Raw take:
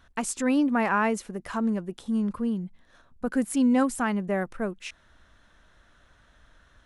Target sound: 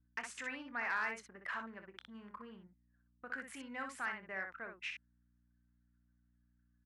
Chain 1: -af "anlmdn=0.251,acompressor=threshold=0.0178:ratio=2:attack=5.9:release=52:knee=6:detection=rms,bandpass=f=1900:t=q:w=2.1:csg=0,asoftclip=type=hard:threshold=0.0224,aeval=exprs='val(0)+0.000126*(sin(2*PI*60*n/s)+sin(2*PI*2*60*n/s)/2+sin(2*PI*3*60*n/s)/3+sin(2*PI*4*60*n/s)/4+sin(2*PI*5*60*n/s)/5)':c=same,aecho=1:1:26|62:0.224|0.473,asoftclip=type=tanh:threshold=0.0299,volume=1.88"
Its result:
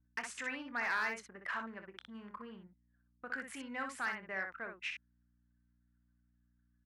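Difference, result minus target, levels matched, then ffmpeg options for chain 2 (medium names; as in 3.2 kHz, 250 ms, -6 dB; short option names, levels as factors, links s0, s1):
compression: peak gain reduction -3 dB
-af "anlmdn=0.251,acompressor=threshold=0.00891:ratio=2:attack=5.9:release=52:knee=6:detection=rms,bandpass=f=1900:t=q:w=2.1:csg=0,asoftclip=type=hard:threshold=0.0224,aeval=exprs='val(0)+0.000126*(sin(2*PI*60*n/s)+sin(2*PI*2*60*n/s)/2+sin(2*PI*3*60*n/s)/3+sin(2*PI*4*60*n/s)/4+sin(2*PI*5*60*n/s)/5)':c=same,aecho=1:1:26|62:0.224|0.473,asoftclip=type=tanh:threshold=0.0299,volume=1.88"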